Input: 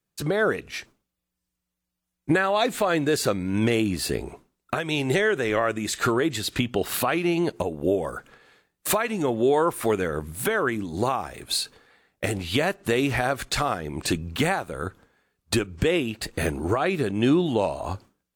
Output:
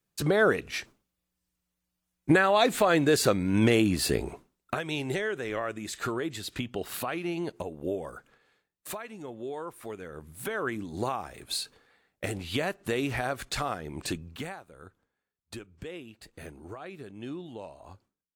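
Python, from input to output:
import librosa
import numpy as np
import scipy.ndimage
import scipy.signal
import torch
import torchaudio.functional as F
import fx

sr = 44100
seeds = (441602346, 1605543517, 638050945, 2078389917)

y = fx.gain(x, sr, db=fx.line((4.29, 0.0), (5.21, -9.0), (8.0, -9.0), (9.23, -16.5), (9.99, -16.5), (10.69, -6.5), (14.04, -6.5), (14.64, -18.5)))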